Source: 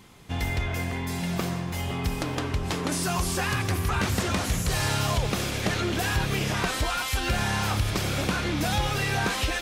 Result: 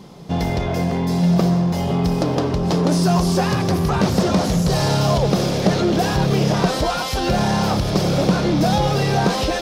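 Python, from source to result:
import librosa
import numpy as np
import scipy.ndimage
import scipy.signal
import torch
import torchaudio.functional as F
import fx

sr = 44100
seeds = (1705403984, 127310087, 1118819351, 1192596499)

p1 = fx.curve_eq(x, sr, hz=(110.0, 160.0, 250.0, 590.0, 1600.0, 2400.0, 5200.0, 7600.0), db=(0, 15, 7, 12, -2, -4, 6, -4))
p2 = np.clip(10.0 ** (23.0 / 20.0) * p1, -1.0, 1.0) / 10.0 ** (23.0 / 20.0)
y = p1 + (p2 * librosa.db_to_amplitude(-6.0))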